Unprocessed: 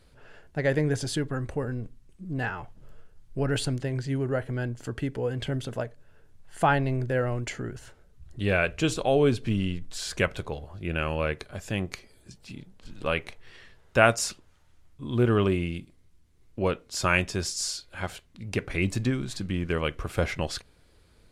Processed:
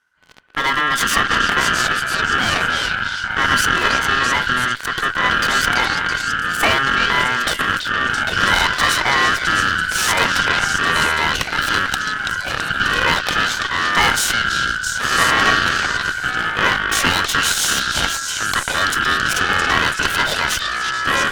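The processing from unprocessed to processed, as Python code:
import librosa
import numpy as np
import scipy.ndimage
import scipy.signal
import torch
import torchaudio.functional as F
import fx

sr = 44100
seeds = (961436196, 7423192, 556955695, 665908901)

p1 = fx.leveller(x, sr, passes=5)
p2 = fx.over_compress(p1, sr, threshold_db=-22.0, ratio=-1.0)
p3 = p1 + (p2 * 10.0 ** (-2.5 / 20.0))
p4 = fx.echo_pitch(p3, sr, ms=147, semitones=-7, count=3, db_per_echo=-3.0)
p5 = p4 * np.sin(2.0 * np.pi * 1500.0 * np.arange(len(p4)) / sr)
p6 = p5 + fx.echo_stepped(p5, sr, ms=332, hz=3600.0, octaves=0.7, feedback_pct=70, wet_db=-1, dry=0)
p7 = fx.cheby_harmonics(p6, sr, harmonics=(4,), levels_db=(-13,), full_scale_db=3.5)
y = p7 * 10.0 ** (-6.5 / 20.0)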